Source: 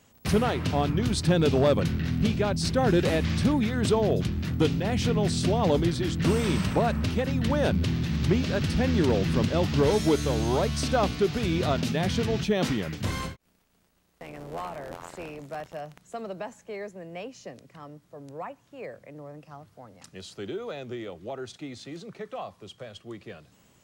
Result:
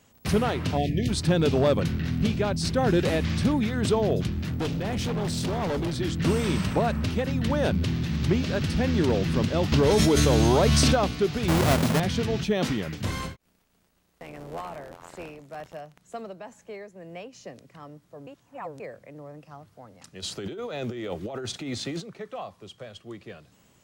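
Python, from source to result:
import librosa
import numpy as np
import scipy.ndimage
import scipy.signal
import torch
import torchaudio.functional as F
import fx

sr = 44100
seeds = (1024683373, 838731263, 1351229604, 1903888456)

y = fx.spec_erase(x, sr, start_s=0.77, length_s=0.32, low_hz=750.0, high_hz=1700.0)
y = fx.overload_stage(y, sr, gain_db=25.0, at=(4.39, 6.0))
y = fx.env_flatten(y, sr, amount_pct=100, at=(9.72, 10.95))
y = fx.halfwave_hold(y, sr, at=(11.48, 12.0))
y = fx.tremolo_shape(y, sr, shape='triangle', hz=2.1, depth_pct=55, at=(14.61, 17.33))
y = fx.over_compress(y, sr, threshold_db=-40.0, ratio=-1.0, at=(20.22, 22.0), fade=0.02)
y = fx.edit(y, sr, fx.reverse_span(start_s=18.27, length_s=0.53), tone=tone)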